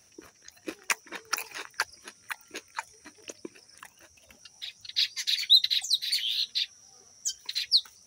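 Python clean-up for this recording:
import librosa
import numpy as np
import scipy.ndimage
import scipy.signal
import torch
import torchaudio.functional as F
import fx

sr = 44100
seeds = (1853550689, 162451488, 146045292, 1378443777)

y = fx.fix_declip(x, sr, threshold_db=-11.0)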